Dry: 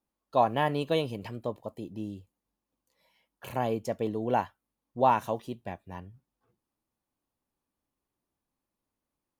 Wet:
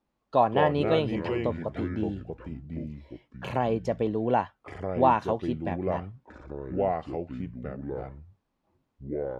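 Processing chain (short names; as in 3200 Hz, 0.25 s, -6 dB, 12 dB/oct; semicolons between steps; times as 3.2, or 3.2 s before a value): Bessel low-pass 3500 Hz, order 2; in parallel at +3 dB: compressor, threshold -36 dBFS, peak gain reduction 17 dB; on the sum: echoes that change speed 82 ms, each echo -5 st, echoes 2, each echo -6 dB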